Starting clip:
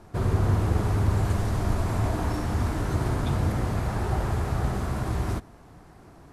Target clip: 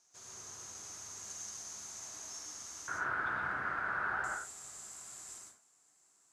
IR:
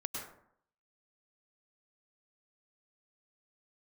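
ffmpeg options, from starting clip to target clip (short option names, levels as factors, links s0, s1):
-filter_complex "[0:a]asetnsamples=n=441:p=0,asendcmd='2.88 bandpass f 1500;4.24 bandpass f 7400',bandpass=f=6400:t=q:w=8.4:csg=0[s0];[1:a]atrim=start_sample=2205,afade=t=out:st=0.28:d=0.01,atrim=end_sample=12789[s1];[s0][s1]afir=irnorm=-1:irlink=0,volume=3.35"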